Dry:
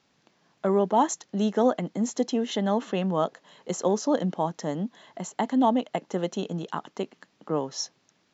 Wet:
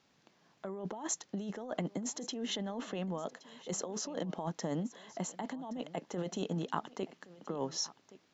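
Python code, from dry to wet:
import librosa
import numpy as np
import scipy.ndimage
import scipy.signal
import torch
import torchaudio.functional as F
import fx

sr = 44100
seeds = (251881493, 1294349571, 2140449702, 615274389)

p1 = fx.over_compress(x, sr, threshold_db=-30.0, ratio=-1.0)
p2 = p1 + fx.echo_single(p1, sr, ms=1121, db=-19.0, dry=0)
y = p2 * librosa.db_to_amplitude(-7.5)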